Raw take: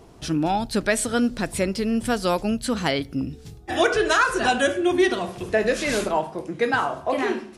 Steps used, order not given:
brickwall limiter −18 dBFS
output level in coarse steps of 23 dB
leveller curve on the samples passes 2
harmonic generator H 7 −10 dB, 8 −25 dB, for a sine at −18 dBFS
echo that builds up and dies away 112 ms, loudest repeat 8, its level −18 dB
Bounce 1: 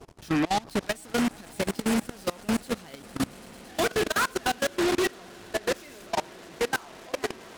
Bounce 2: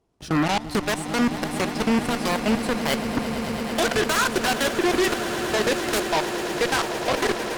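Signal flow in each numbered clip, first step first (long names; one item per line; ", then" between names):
leveller curve on the samples, then echo that builds up and dies away, then brickwall limiter, then harmonic generator, then output level in coarse steps
output level in coarse steps, then brickwall limiter, then harmonic generator, then echo that builds up and dies away, then leveller curve on the samples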